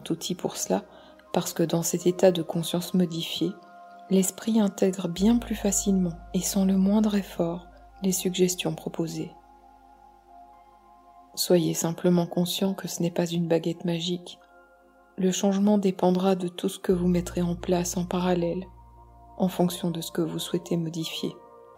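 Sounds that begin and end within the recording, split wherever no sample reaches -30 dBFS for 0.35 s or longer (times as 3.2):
1.34–3.51
4.11–7.58
8.03–9.26
11.38–14.27
15.18–18.62
19.4–21.31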